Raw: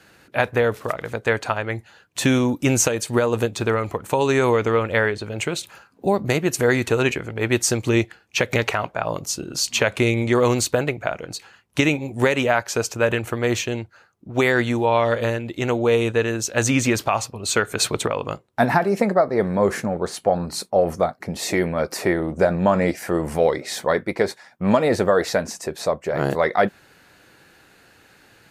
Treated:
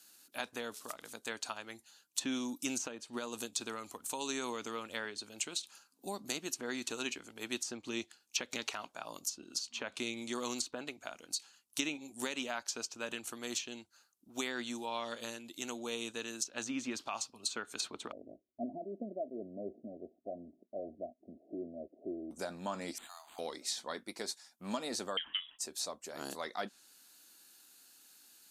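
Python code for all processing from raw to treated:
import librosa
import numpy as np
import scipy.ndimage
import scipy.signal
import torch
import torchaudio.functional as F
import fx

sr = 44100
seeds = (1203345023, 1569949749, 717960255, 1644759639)

y = fx.chain(x, sr, fx.steep_lowpass(hz=690.0, slope=96),
    fx.comb(ms=3.1, depth=0.41), at=(18.12, 22.31))
y = fx.chain(y, sr, fx.cheby1_highpass(hz=650.0, order=8),
    fx.resample_linear(factor=8), at=(22.98, 23.39))
y = fx.chain(y, sr, fx.highpass(hz=570.0, slope=6),
    fx.freq_invert(carrier_hz=3600), at=(25.17, 25.59))
y = F.preemphasis(torch.from_numpy(y), 0.97).numpy()
y = fx.env_lowpass_down(y, sr, base_hz=2000.0, full_db=-25.5)
y = fx.graphic_eq(y, sr, hz=(125, 250, 500, 2000), db=(-11, 11, -6, -12))
y = y * librosa.db_to_amplitude(2.0)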